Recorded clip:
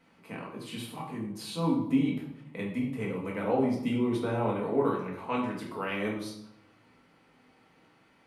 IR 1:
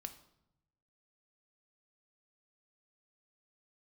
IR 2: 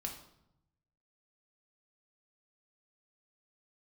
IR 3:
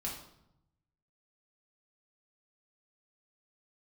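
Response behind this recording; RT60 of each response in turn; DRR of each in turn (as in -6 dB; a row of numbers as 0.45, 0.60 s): 3; 0.80, 0.80, 0.80 s; 7.5, 1.0, -4.0 dB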